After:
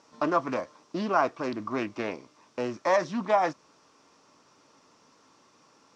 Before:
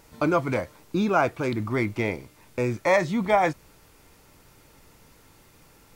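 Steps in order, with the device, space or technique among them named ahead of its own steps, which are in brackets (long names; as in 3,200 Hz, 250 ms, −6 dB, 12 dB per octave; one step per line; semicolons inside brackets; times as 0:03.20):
full-range speaker at full volume (highs frequency-modulated by the lows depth 0.27 ms; loudspeaker in its box 220–7,000 Hz, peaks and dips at 260 Hz +5 dB, 620 Hz +3 dB, 1,100 Hz +10 dB, 2,100 Hz −4 dB, 5,600 Hz +8 dB)
level −5.5 dB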